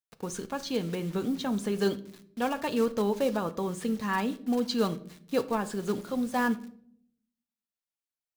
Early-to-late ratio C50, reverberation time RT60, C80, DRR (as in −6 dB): 17.0 dB, 0.65 s, 21.0 dB, 9.5 dB